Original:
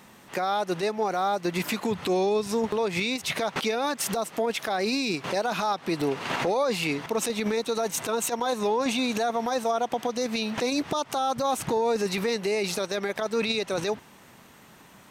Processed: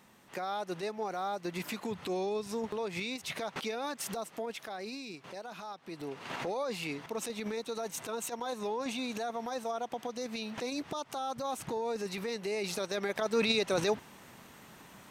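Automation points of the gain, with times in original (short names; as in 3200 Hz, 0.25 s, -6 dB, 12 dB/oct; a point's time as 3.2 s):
4.19 s -9.5 dB
5.16 s -17 dB
5.84 s -17 dB
6.38 s -10 dB
12.26 s -10 dB
13.5 s -1.5 dB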